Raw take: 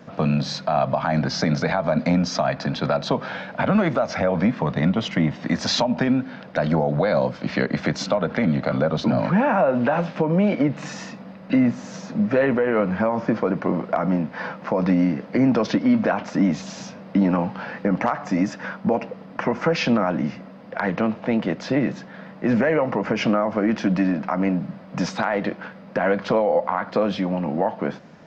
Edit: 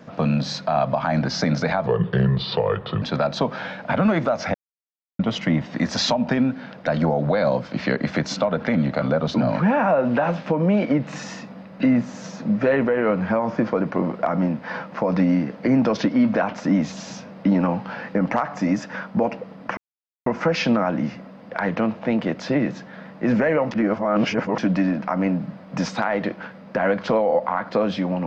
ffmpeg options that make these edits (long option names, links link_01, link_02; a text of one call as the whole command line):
ffmpeg -i in.wav -filter_complex "[0:a]asplit=8[link_01][link_02][link_03][link_04][link_05][link_06][link_07][link_08];[link_01]atrim=end=1.864[link_09];[link_02]atrim=start=1.86:end=2.72,asetpts=PTS-STARTPTS,asetrate=32634,aresample=44100,atrim=end_sample=51251,asetpts=PTS-STARTPTS[link_10];[link_03]atrim=start=2.716:end=4.24,asetpts=PTS-STARTPTS,afade=type=out:start_time=1.52:duration=0.004:curve=hsin[link_11];[link_04]atrim=start=4.24:end=4.89,asetpts=PTS-STARTPTS,volume=0[link_12];[link_05]atrim=start=4.89:end=19.47,asetpts=PTS-STARTPTS,afade=type=in:duration=0.004:curve=hsin,afade=type=out:start_time=14.576:duration=0.004:curve=hsin,apad=pad_dur=0.49[link_13];[link_06]atrim=start=19.47:end=22.922,asetpts=PTS-STARTPTS,afade=type=in:duration=0.004:curve=hsin[link_14];[link_07]atrim=start=22.918:end=23.792,asetpts=PTS-STARTPTS,areverse[link_15];[link_08]atrim=start=23.788[link_16];[link_09][link_10]acrossfade=duration=0.004:curve1=hsin:curve2=hsin[link_17];[link_11][link_12][link_13][link_14]concat=n=4:v=0:a=1[link_18];[link_17][link_18]acrossfade=duration=0.004:curve1=hsin:curve2=hsin[link_19];[link_19][link_15]acrossfade=duration=0.004:curve1=hsin:curve2=hsin[link_20];[link_20][link_16]acrossfade=duration=0.004:curve1=hsin:curve2=hsin" out.wav